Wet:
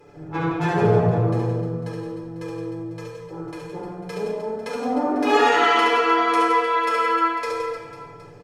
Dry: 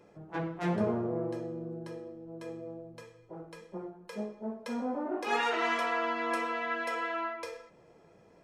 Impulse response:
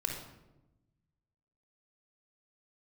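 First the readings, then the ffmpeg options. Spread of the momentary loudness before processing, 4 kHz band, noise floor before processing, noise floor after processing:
17 LU, +13.0 dB, -60 dBFS, -42 dBFS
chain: -filter_complex "[0:a]aecho=1:1:6.9:0.71,aecho=1:1:70|168|305.2|497.3|766.2:0.631|0.398|0.251|0.158|0.1[a];[1:a]atrim=start_sample=2205,asetrate=37044,aresample=44100[b];[a][b]afir=irnorm=-1:irlink=0,volume=4.5dB"

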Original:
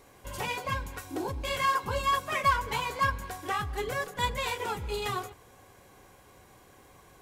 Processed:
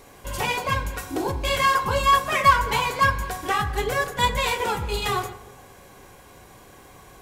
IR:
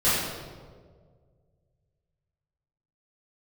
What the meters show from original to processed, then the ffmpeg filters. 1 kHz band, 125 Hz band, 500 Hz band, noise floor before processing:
+8.0 dB, +7.5 dB, +7.5 dB, -57 dBFS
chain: -filter_complex "[0:a]bandreject=f=59.35:t=h:w=4,bandreject=f=118.7:t=h:w=4,bandreject=f=178.05:t=h:w=4,bandreject=f=237.4:t=h:w=4,bandreject=f=296.75:t=h:w=4,bandreject=f=356.1:t=h:w=4,bandreject=f=415.45:t=h:w=4,bandreject=f=474.8:t=h:w=4,bandreject=f=534.15:t=h:w=4,bandreject=f=593.5:t=h:w=4,bandreject=f=652.85:t=h:w=4,bandreject=f=712.2:t=h:w=4,bandreject=f=771.55:t=h:w=4,bandreject=f=830.9:t=h:w=4,bandreject=f=890.25:t=h:w=4,bandreject=f=949.6:t=h:w=4,bandreject=f=1.00895k:t=h:w=4,bandreject=f=1.0683k:t=h:w=4,bandreject=f=1.12765k:t=h:w=4,bandreject=f=1.187k:t=h:w=4,bandreject=f=1.24635k:t=h:w=4,bandreject=f=1.3057k:t=h:w=4,bandreject=f=1.36505k:t=h:w=4,bandreject=f=1.4244k:t=h:w=4,bandreject=f=1.48375k:t=h:w=4,bandreject=f=1.5431k:t=h:w=4,bandreject=f=1.60245k:t=h:w=4,bandreject=f=1.6618k:t=h:w=4,bandreject=f=1.72115k:t=h:w=4,bandreject=f=1.7805k:t=h:w=4,bandreject=f=1.83985k:t=h:w=4,bandreject=f=1.8992k:t=h:w=4,bandreject=f=1.95855k:t=h:w=4,bandreject=f=2.0179k:t=h:w=4,bandreject=f=2.07725k:t=h:w=4,bandreject=f=2.1366k:t=h:w=4,bandreject=f=2.19595k:t=h:w=4,bandreject=f=2.2553k:t=h:w=4,bandreject=f=2.31465k:t=h:w=4,asplit=2[a][b];[1:a]atrim=start_sample=2205,asetrate=66150,aresample=44100[c];[b][c]afir=irnorm=-1:irlink=0,volume=-26dB[d];[a][d]amix=inputs=2:normalize=0,volume=8dB"

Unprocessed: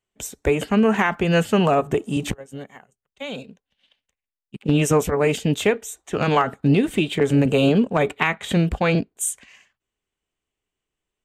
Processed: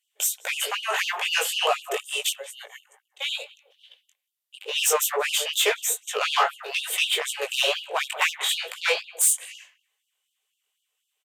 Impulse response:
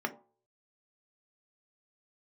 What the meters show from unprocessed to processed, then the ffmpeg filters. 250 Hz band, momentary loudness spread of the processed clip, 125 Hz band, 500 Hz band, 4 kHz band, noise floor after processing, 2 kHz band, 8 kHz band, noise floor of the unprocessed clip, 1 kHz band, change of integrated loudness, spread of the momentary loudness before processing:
under -30 dB, 9 LU, under -40 dB, -9.5 dB, +8.0 dB, -79 dBFS, +0.5 dB, +7.0 dB, under -85 dBFS, -3.5 dB, -3.5 dB, 15 LU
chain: -filter_complex "[0:a]aemphasis=mode=production:type=bsi,asplit=2[a][b];[b]adelay=182,lowpass=f=1.3k:p=1,volume=-15.5dB,asplit=2[c][d];[d]adelay=182,lowpass=f=1.3k:p=1,volume=0.28,asplit=2[e][f];[f]adelay=182,lowpass=f=1.3k:p=1,volume=0.28[g];[a][c][e][g]amix=inputs=4:normalize=0,aresample=32000,aresample=44100,equalizer=f=3.2k:t=o:w=0.81:g=8,bandreject=f=173.3:t=h:w=4,bandreject=f=346.6:t=h:w=4,bandreject=f=519.9:t=h:w=4,bandreject=f=693.2:t=h:w=4,bandreject=f=866.5:t=h:w=4,bandreject=f=1.0398k:t=h:w=4,bandreject=f=1.2131k:t=h:w=4,asoftclip=type=tanh:threshold=-15.5dB,flanger=delay=16.5:depth=5.4:speed=2.3,asplit=2[h][i];[1:a]atrim=start_sample=2205,asetrate=26901,aresample=44100[j];[i][j]afir=irnorm=-1:irlink=0,volume=-20dB[k];[h][k]amix=inputs=2:normalize=0,afftfilt=real='re*gte(b*sr/1024,350*pow(2800/350,0.5+0.5*sin(2*PI*4*pts/sr)))':imag='im*gte(b*sr/1024,350*pow(2800/350,0.5+0.5*sin(2*PI*4*pts/sr)))':win_size=1024:overlap=0.75,volume=3dB"

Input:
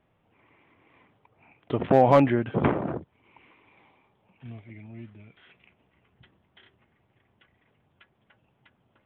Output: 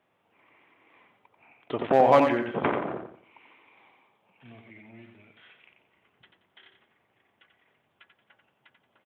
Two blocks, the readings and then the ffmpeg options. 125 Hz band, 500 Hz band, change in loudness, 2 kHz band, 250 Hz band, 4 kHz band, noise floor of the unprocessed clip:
-10.5 dB, -0.5 dB, -1.0 dB, +2.0 dB, -4.0 dB, +2.5 dB, -70 dBFS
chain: -filter_complex "[0:a]highpass=f=540:p=1,asplit=2[a][b];[b]aecho=0:1:89|178|267|356:0.473|0.161|0.0547|0.0186[c];[a][c]amix=inputs=2:normalize=0,volume=1.5dB"

